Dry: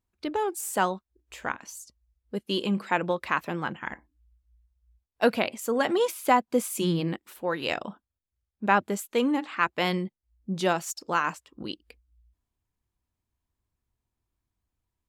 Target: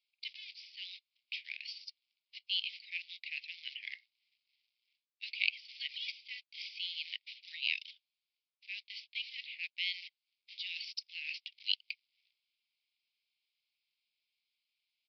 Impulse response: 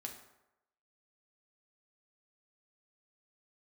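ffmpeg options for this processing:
-af "areverse,acompressor=threshold=-36dB:ratio=12,areverse,acrusher=bits=4:mode=log:mix=0:aa=0.000001,asuperpass=centerf=4000:order=20:qfactor=0.81,aresample=11025,aresample=44100,volume=12dB"

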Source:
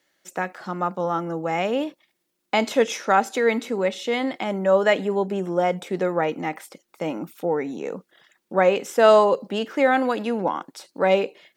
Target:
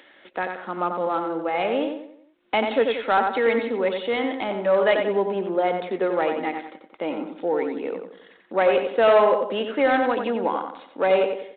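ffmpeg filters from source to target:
ffmpeg -i in.wav -filter_complex "[0:a]asplit=2[link_01][link_02];[link_02]adelay=90,lowpass=frequency=2700:poles=1,volume=-5.5dB,asplit=2[link_03][link_04];[link_04]adelay=90,lowpass=frequency=2700:poles=1,volume=0.41,asplit=2[link_05][link_06];[link_06]adelay=90,lowpass=frequency=2700:poles=1,volume=0.41,asplit=2[link_07][link_08];[link_08]adelay=90,lowpass=frequency=2700:poles=1,volume=0.41,asplit=2[link_09][link_10];[link_10]adelay=90,lowpass=frequency=2700:poles=1,volume=0.41[link_11];[link_03][link_05][link_07][link_09][link_11]amix=inputs=5:normalize=0[link_12];[link_01][link_12]amix=inputs=2:normalize=0,acompressor=mode=upward:threshold=-36dB:ratio=2.5,asoftclip=type=tanh:threshold=-9.5dB,highpass=frequency=230:width=0.5412,highpass=frequency=230:width=1.3066" -ar 8000 -c:a adpcm_g726 -b:a 32k out.wav

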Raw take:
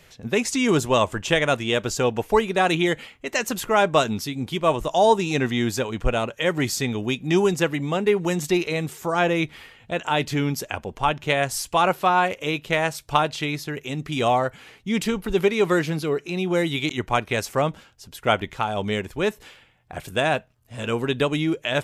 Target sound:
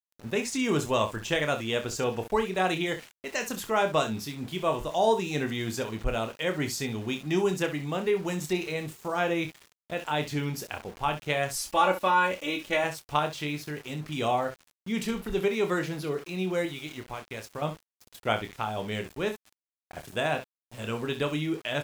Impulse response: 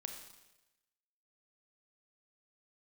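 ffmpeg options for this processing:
-filter_complex "[0:a]asettb=1/sr,asplit=3[link_01][link_02][link_03];[link_01]atrim=end=11.534[link_04];[link_02]atrim=start=11.53:end=12.84,asetpts=PTS-STARTPTS,afade=type=in:duration=0.004:curve=qsin,afade=type=out:start_time=1.306:duration=0.004:curve=qsin,aecho=1:1:3.5:0.87,atrim=end_sample=57771[link_05];[link_03]atrim=start=12.836[link_06];[link_04][link_05]acrossfade=duration=0.004:curve1=hsin:curve2=qsin[link_07];[link_07][link_06]acrossfade=duration=0.004:curve1=qsin:curve2=hsin,asettb=1/sr,asplit=3[link_08][link_09][link_10];[link_08]atrim=end=16.654[link_11];[link_09]atrim=start=16.65:end=17.62,asetpts=PTS-STARTPTS,afade=type=in:duration=0.004:curve=qsin,afade=type=out:start_time=0.966:duration=0.004:curve=qsin,acompressor=threshold=-30dB:ratio=3[link_12];[link_10]atrim=start=17.616[link_13];[link_11][link_12]acrossfade=duration=0.004:curve1=hsin:curve2=qsin[link_14];[link_14][link_13]acrossfade=duration=0.004:curve1=qsin:curve2=hsin,aecho=1:1:27|65:0.422|0.251,aeval=exprs='val(0)*gte(abs(val(0)),0.015)':channel_layout=same,volume=-7.5dB"

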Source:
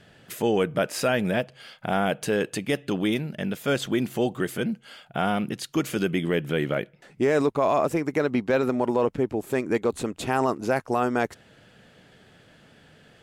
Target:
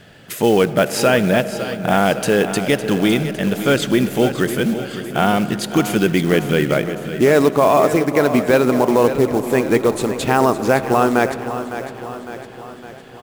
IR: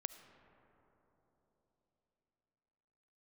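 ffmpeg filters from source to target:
-filter_complex "[0:a]acrusher=bits=5:mode=log:mix=0:aa=0.000001,aecho=1:1:557|1114|1671|2228|2785|3342:0.266|0.146|0.0805|0.0443|0.0243|0.0134,asplit=2[link_01][link_02];[1:a]atrim=start_sample=2205[link_03];[link_02][link_03]afir=irnorm=-1:irlink=0,volume=7.5dB[link_04];[link_01][link_04]amix=inputs=2:normalize=0"

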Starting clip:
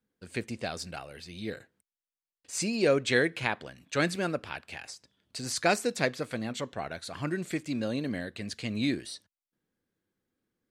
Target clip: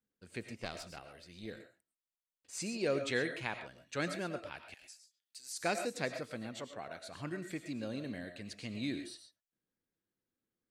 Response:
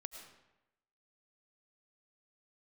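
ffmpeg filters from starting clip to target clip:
-filter_complex "[0:a]asettb=1/sr,asplit=3[link_01][link_02][link_03];[link_01]atrim=end=0.554[link_04];[link_02]atrim=start=0.55:end=1.46,asetpts=PTS-STARTPTS,afade=type=in:duration=0.004:curve=qsin,afade=type=out:start_time=0.906:duration=0.004:curve=qsin,aeval=exprs='0.133*(cos(1*acos(clip(val(0)/0.133,-1,1)))-cos(1*PI/2))+0.0668*(cos(2*acos(clip(val(0)/0.133,-1,1)))-cos(2*PI/2))+0.00376*(cos(7*acos(clip(val(0)/0.133,-1,1)))-cos(7*PI/2))':channel_layout=same[link_05];[link_03]atrim=start=1.456[link_06];[link_04][link_05]acrossfade=duration=0.004:curve1=hsin:curve2=qsin[link_07];[link_07][link_06]acrossfade=duration=0.004:curve1=qsin:curve2=hsin,asettb=1/sr,asplit=3[link_08][link_09][link_10];[link_08]atrim=end=4.744[link_11];[link_09]atrim=start=4.74:end=5.61,asetpts=PTS-STARTPTS,afade=type=in:duration=0.004:curve=qsin,afade=type=out:start_time=0.866:duration=0.004:curve=qsin,aderivative[link_12];[link_10]atrim=start=5.606[link_13];[link_11][link_12]acrossfade=duration=0.004:curve1=hsin:curve2=qsin[link_14];[link_14][link_13]acrossfade=duration=0.004:curve1=qsin:curve2=hsin,asettb=1/sr,asplit=3[link_15][link_16][link_17];[link_15]atrim=end=6.584[link_18];[link_16]atrim=start=6.58:end=7.09,asetpts=PTS-STARTPTS,afade=type=in:duration=0.004:curve=qsin,afade=type=out:start_time=0.506:duration=0.004:curve=qsin,highpass=frequency=170:poles=1[link_19];[link_17]atrim=start=7.086[link_20];[link_18][link_19]acrossfade=duration=0.004:curve1=hsin:curve2=qsin[link_21];[link_21][link_20]acrossfade=duration=0.004:curve1=qsin:curve2=hsin[link_22];[1:a]atrim=start_sample=2205,afade=type=out:start_time=0.19:duration=0.01,atrim=end_sample=8820[link_23];[link_22][link_23]afir=irnorm=-1:irlink=0,volume=-4dB"

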